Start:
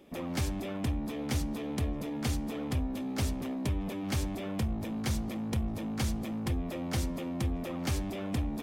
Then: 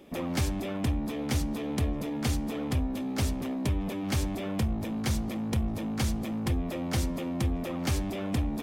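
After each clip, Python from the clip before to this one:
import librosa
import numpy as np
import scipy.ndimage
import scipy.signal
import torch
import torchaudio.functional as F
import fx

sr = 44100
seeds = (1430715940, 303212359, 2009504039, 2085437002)

y = fx.rider(x, sr, range_db=10, speed_s=0.5)
y = F.gain(torch.from_numpy(y), 3.0).numpy()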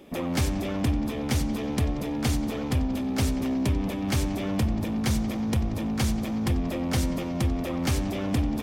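y = fx.echo_bbd(x, sr, ms=92, stages=4096, feedback_pct=84, wet_db=-16.5)
y = F.gain(torch.from_numpy(y), 3.0).numpy()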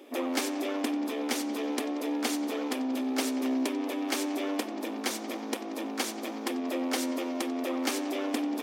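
y = fx.brickwall_highpass(x, sr, low_hz=240.0)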